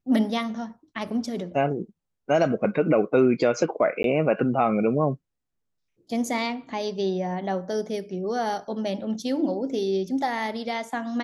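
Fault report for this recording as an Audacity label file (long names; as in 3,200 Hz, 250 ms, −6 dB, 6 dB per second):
4.030000	4.040000	drop-out 12 ms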